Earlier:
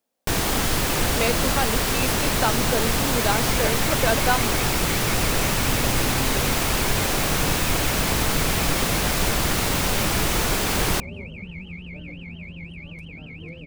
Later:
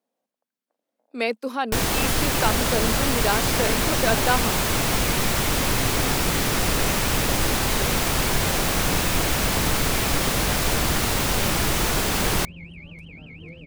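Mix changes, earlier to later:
first sound: entry +1.45 s; second sound -3.0 dB

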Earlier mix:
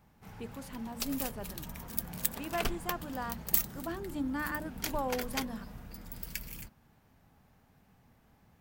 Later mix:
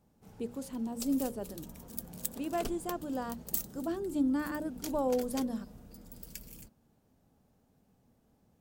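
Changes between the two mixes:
background -7.0 dB; master: add graphic EQ 250/500/1000/2000/8000 Hz +5/+6/-3/-7/+5 dB

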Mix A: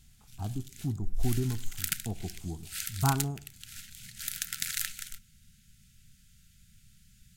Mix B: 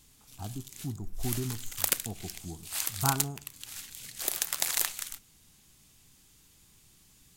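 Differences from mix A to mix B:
background: remove brick-wall FIR band-stop 240–1300 Hz; master: add tilt EQ +1.5 dB/octave

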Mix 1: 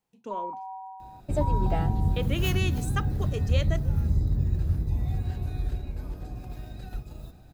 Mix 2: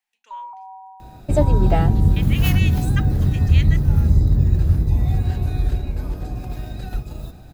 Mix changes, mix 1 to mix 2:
speech: add resonant high-pass 1.9 kHz, resonance Q 2.4; second sound +9.5 dB

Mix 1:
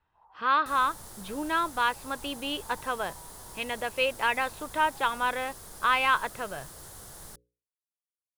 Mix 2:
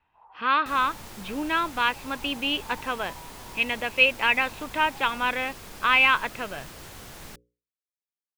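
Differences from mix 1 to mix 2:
first sound +5.5 dB; second sound +4.0 dB; master: add fifteen-band graphic EQ 250 Hz +6 dB, 2.5 kHz +12 dB, 10 kHz -10 dB

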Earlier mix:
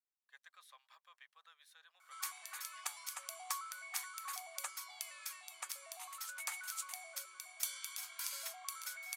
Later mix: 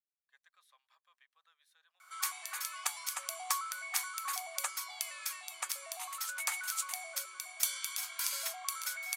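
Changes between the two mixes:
speech -7.0 dB; background +7.0 dB

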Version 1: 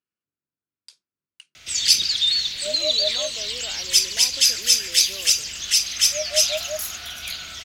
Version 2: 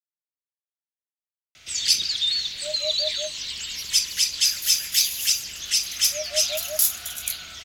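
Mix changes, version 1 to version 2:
speech: muted; first sound -3.5 dB; second sound +11.5 dB

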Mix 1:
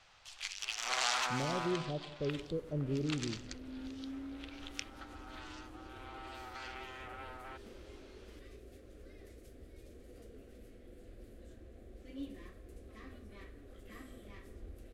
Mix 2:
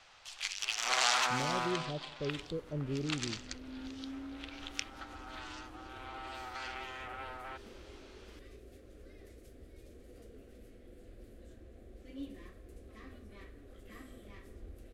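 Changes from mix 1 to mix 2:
speech: send -6.0 dB; first sound +4.0 dB

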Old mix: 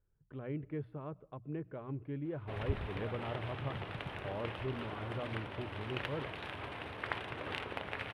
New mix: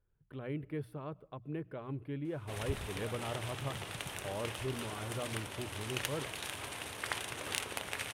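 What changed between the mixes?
background -3.0 dB; master: remove distance through air 420 m

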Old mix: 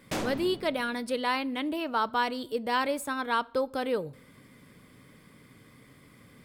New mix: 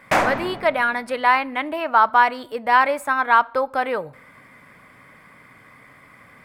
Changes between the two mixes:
background +6.0 dB; master: add high-order bell 1.2 kHz +13 dB 2.3 oct

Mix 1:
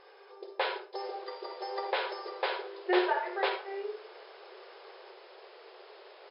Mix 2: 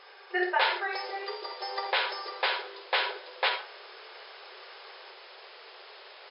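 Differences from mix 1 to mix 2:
speech: entry -2.55 s; master: add tilt shelf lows -9 dB, about 640 Hz

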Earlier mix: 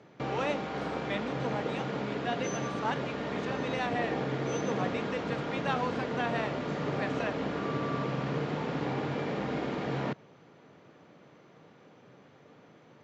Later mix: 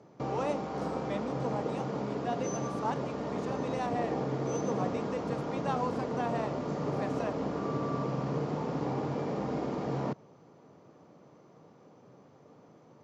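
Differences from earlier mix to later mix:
speech: remove low-pass 8 kHz 24 dB/octave; second sound +4.5 dB; master: add high-order bell 2.4 kHz -9.5 dB

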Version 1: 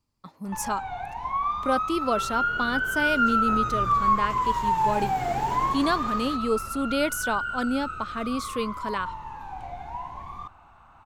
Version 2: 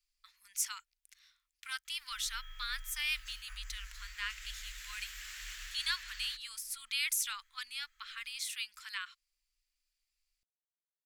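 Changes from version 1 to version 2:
first sound: muted; master: add inverse Chebyshev band-stop 100–630 Hz, stop band 60 dB

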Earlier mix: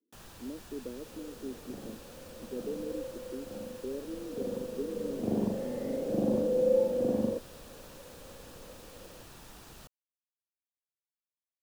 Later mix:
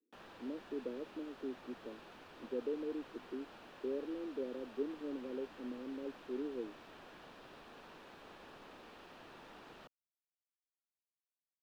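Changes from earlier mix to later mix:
second sound: muted; master: add three-band isolator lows -17 dB, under 210 Hz, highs -23 dB, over 3.6 kHz

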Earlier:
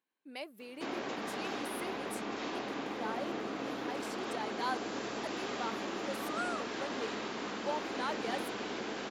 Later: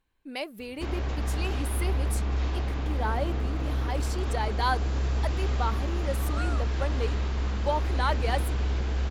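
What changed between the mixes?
speech +9.0 dB; master: remove high-pass 220 Hz 24 dB/octave

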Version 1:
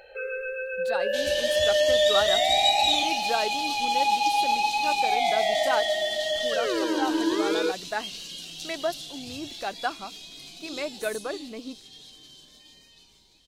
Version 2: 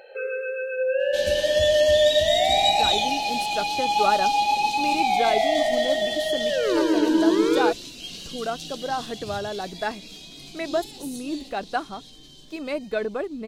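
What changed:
speech: entry +1.90 s; master: add bass shelf 470 Hz +9.5 dB

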